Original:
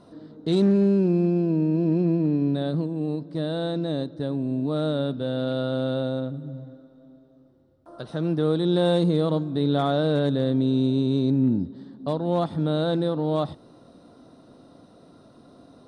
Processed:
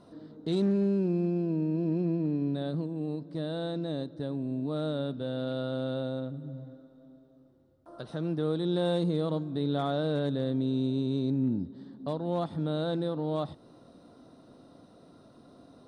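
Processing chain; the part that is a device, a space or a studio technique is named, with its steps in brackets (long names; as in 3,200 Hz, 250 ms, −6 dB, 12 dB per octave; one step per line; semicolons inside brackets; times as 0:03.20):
parallel compression (in parallel at −4 dB: downward compressor, threshold −34 dBFS, peak gain reduction 16.5 dB)
on the sum: level −8 dB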